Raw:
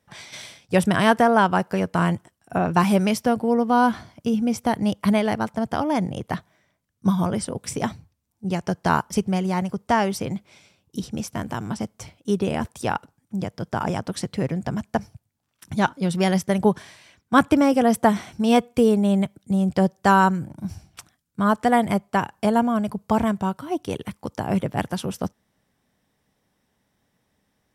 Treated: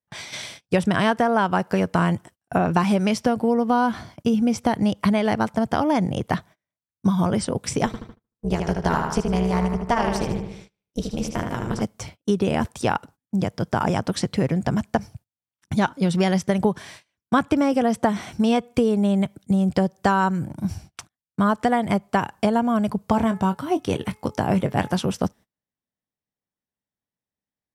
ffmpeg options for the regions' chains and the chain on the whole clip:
ffmpeg -i in.wav -filter_complex "[0:a]asettb=1/sr,asplit=3[link_01][link_02][link_03];[link_01]atrim=end=7.864[link_04];[link_02]atrim=start=7.86:end=11.82,asetpts=PTS-STARTPTS,afade=type=in:duration=0.004:curve=qsin,afade=type=out:start_time=3.956:duration=0.004:curve=qsin,tremolo=f=250:d=0.857,asplit=2[link_05][link_06];[link_06]adelay=76,lowpass=frequency=4800:poles=1,volume=-5dB,asplit=2[link_07][link_08];[link_08]adelay=76,lowpass=frequency=4800:poles=1,volume=0.52,asplit=2[link_09][link_10];[link_10]adelay=76,lowpass=frequency=4800:poles=1,volume=0.52,asplit=2[link_11][link_12];[link_12]adelay=76,lowpass=frequency=4800:poles=1,volume=0.52,asplit=2[link_13][link_14];[link_14]adelay=76,lowpass=frequency=4800:poles=1,volume=0.52,asplit=2[link_15][link_16];[link_16]adelay=76,lowpass=frequency=4800:poles=1,volume=0.52,asplit=2[link_17][link_18];[link_18]adelay=76,lowpass=frequency=4800:poles=1,volume=0.52[link_19];[link_05][link_07][link_09][link_11][link_13][link_15][link_17][link_19]amix=inputs=8:normalize=0,atrim=end_sample=174636[link_20];[link_03]atrim=start=11.816[link_21];[link_04][link_20]acrossfade=duration=0.004:curve1=hsin:curve2=qsin[link_22];[link_22][link_21]acrossfade=duration=0.004:curve1=qsin:curve2=hsin,asettb=1/sr,asplit=3[link_23][link_24][link_25];[link_23]atrim=end=23.044[link_26];[link_24]atrim=start=23.04:end=24.99,asetpts=PTS-STARTPTS,afade=type=in:duration=0.004:curve=qsin,afade=type=out:start_time=1.946:duration=0.004:curve=qsin,asplit=2[link_27][link_28];[link_28]adelay=22,volume=-12dB[link_29];[link_27][link_29]amix=inputs=2:normalize=0,atrim=end_sample=85995,bandreject=frequency=428.2:width_type=h:width=4,bandreject=frequency=856.4:width_type=h:width=4,bandreject=frequency=1284.6:width_type=h:width=4,bandreject=frequency=1712.8:width_type=h:width=4,bandreject=frequency=2141:width_type=h:width=4,bandreject=frequency=2569.2:width_type=h:width=4[link_30];[link_25]atrim=start=24.986[link_31];[link_26][link_30]acrossfade=duration=0.004:curve1=hsin:curve2=qsin[link_32];[link_32][link_31]acrossfade=duration=0.004:curve1=qsin:curve2=hsin,acrossover=split=8400[link_33][link_34];[link_34]acompressor=threshold=-54dB:ratio=4:attack=1:release=60[link_35];[link_33][link_35]amix=inputs=2:normalize=0,agate=range=-29dB:threshold=-46dB:ratio=16:detection=peak,acompressor=threshold=-21dB:ratio=6,volume=5dB" out.wav

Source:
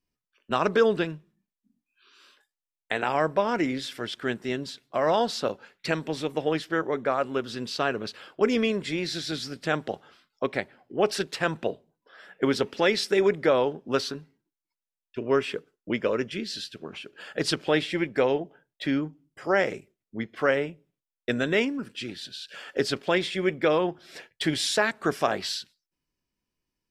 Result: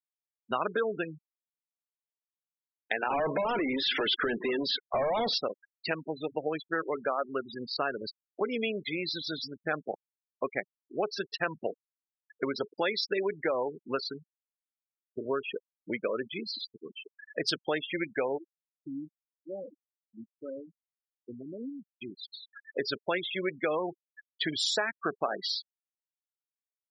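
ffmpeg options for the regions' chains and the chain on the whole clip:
ffmpeg -i in.wav -filter_complex "[0:a]asettb=1/sr,asplit=3[link_01][link_02][link_03];[link_01]atrim=end=3.104[link_04];[link_02]atrim=start=3.1:end=5.38,asetpts=PTS-STARTPTS,afade=type=in:duration=0.004:curve=qsin,afade=type=out:start_time=2.276:duration=0.004:curve=qsin,asplit=2[link_05][link_06];[link_06]highpass=frequency=720:poles=1,volume=33dB,asoftclip=type=tanh:threshold=-9.5dB[link_07];[link_05][link_07]amix=inputs=2:normalize=0,lowpass=frequency=3600:poles=1,volume=-6dB,highshelf=frequency=5100:gain=-11.5,acrossover=split=500|3000[link_08][link_09][link_10];[link_09]acompressor=threshold=-34dB:ratio=2:attack=3.2:release=140:knee=2.83:detection=peak[link_11];[link_08][link_11][link_10]amix=inputs=3:normalize=0[link_12];[link_03]atrim=start=5.376[link_13];[link_04][link_12]acrossfade=duration=0.004:curve1=hsin:curve2=qsin[link_14];[link_14][link_13]acrossfade=duration=0.004:curve1=qsin:curve2=hsin,asettb=1/sr,asplit=3[link_15][link_16][link_17];[link_15]atrim=end=18.384[link_18];[link_16]atrim=start=18.38:end=22.02,asetpts=PTS-STARTPTS,afade=type=in:duration=0.004:curve=qsin,afade=type=out:start_time=3.636:duration=0.004:curve=qsin,deesser=0.9,flanger=delay=2.7:depth=1.2:regen=32:speed=2:shape=triangular,bandpass=frequency=120:width_type=q:width=0.69[link_19];[link_17]atrim=start=22.016[link_20];[link_18][link_19]acrossfade=duration=0.004:curve1=hsin:curve2=qsin[link_21];[link_21][link_20]acrossfade=duration=0.004:curve1=qsin:curve2=hsin,acompressor=threshold=-24dB:ratio=4,afftfilt=real='re*gte(hypot(re,im),0.0447)':imag='im*gte(hypot(re,im),0.0447)':win_size=1024:overlap=0.75,lowshelf=frequency=340:gain=-10.5,volume=1dB" out.wav

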